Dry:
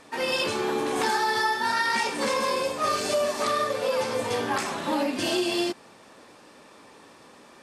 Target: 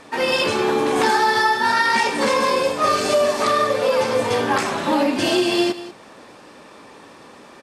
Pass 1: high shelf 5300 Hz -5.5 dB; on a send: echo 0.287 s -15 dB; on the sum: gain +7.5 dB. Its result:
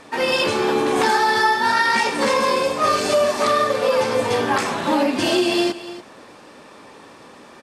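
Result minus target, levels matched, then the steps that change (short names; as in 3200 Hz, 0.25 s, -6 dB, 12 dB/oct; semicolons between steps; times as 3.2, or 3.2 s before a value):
echo 96 ms late
change: echo 0.191 s -15 dB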